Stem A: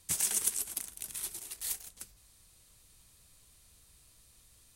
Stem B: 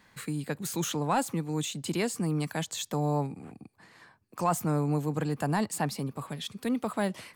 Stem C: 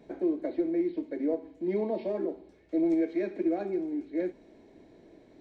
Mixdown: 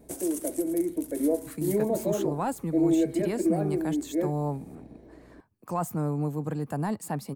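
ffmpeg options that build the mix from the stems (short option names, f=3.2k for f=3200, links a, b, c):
-filter_complex "[0:a]volume=-4dB[a];[1:a]adelay=1300,volume=-4dB[b];[2:a]equalizer=f=360:t=o:w=0.2:g=-4,aeval=exprs='val(0)+0.000891*(sin(2*PI*60*n/s)+sin(2*PI*2*60*n/s)/2+sin(2*PI*3*60*n/s)/3+sin(2*PI*4*60*n/s)/4+sin(2*PI*5*60*n/s)/5)':c=same,volume=1.5dB[c];[a][b][c]amix=inputs=3:normalize=0,equalizer=f=3.6k:w=0.46:g=-10,dynaudnorm=f=110:g=13:m=3.5dB"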